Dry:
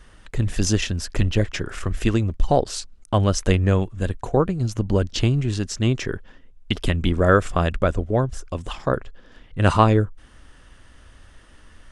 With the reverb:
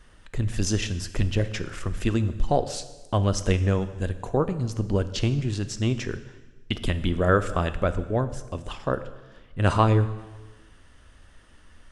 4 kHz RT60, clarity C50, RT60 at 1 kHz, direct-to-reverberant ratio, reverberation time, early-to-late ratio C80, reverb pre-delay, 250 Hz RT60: 1.2 s, 13.0 dB, 1.2 s, 11.0 dB, 1.2 s, 15.0 dB, 8 ms, 1.3 s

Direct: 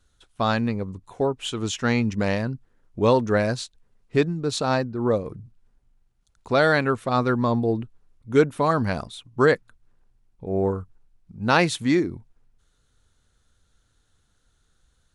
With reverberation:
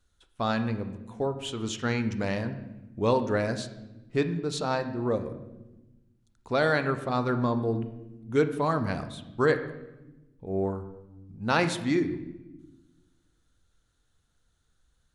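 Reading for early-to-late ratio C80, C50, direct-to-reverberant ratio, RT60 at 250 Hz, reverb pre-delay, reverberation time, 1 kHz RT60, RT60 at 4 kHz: 13.0 dB, 11.0 dB, 8.5 dB, 1.7 s, 13 ms, 1.0 s, 0.90 s, 0.80 s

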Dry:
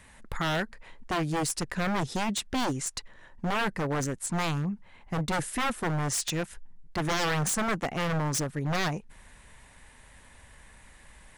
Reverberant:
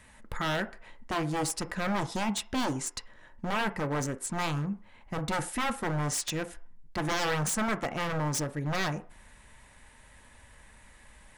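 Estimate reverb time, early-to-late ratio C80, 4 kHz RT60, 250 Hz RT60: 0.45 s, 21.5 dB, 0.45 s, 0.40 s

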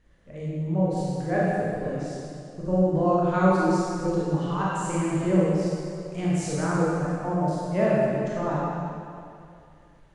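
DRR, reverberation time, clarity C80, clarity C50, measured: −8.0 dB, 2.5 s, −2.0 dB, −4.0 dB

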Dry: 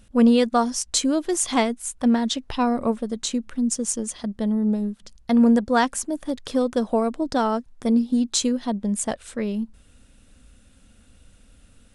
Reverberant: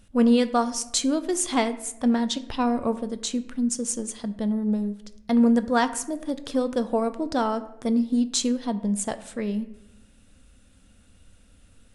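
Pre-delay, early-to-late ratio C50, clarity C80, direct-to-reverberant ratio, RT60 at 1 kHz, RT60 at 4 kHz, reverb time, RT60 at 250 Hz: 9 ms, 14.5 dB, 17.0 dB, 11.0 dB, 0.75 s, 0.55 s, 0.85 s, 1.1 s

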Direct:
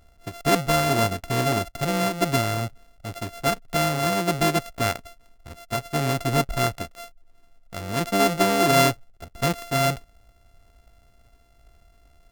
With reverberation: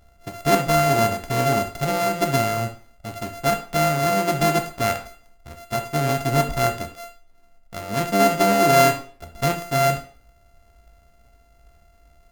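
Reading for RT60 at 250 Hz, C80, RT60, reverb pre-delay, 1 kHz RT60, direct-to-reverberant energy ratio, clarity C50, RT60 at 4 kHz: 0.45 s, 14.5 dB, 0.45 s, 8 ms, 0.50 s, 4.5 dB, 10.5 dB, 0.40 s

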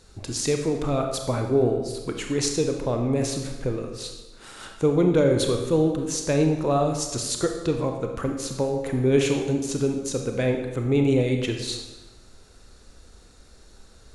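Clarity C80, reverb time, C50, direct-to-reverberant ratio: 7.5 dB, 1.2 s, 5.0 dB, 3.5 dB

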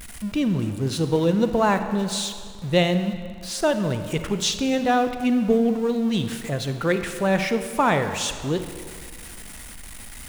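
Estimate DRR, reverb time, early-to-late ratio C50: 8.5 dB, 2.1 s, 9.0 dB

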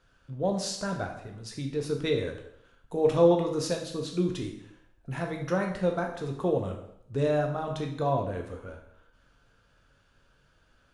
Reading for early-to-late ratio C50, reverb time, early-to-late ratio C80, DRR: 6.5 dB, 0.75 s, 10.0 dB, 2.0 dB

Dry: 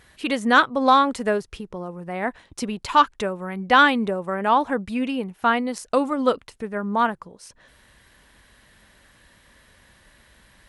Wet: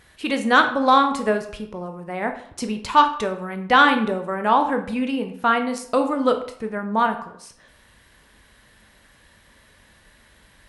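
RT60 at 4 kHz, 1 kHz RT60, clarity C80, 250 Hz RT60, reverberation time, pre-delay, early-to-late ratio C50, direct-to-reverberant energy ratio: 0.45 s, 0.65 s, 13.5 dB, 0.65 s, 0.65 s, 13 ms, 10.0 dB, 6.0 dB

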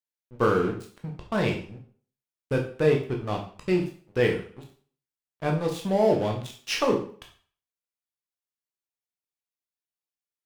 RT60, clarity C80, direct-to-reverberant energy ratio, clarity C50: 0.45 s, 12.5 dB, 1.0 dB, 8.0 dB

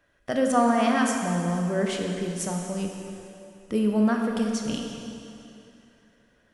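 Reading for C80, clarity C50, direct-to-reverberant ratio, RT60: 3.5 dB, 2.5 dB, 1.0 dB, 2.8 s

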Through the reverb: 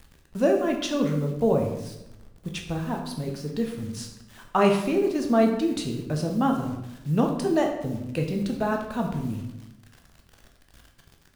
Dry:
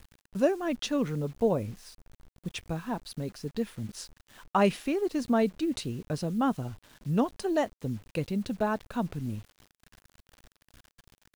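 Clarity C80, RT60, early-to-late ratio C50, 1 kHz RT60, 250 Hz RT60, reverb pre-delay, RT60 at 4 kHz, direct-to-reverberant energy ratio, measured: 8.5 dB, 0.90 s, 6.0 dB, 0.80 s, 1.1 s, 11 ms, 0.65 s, 2.0 dB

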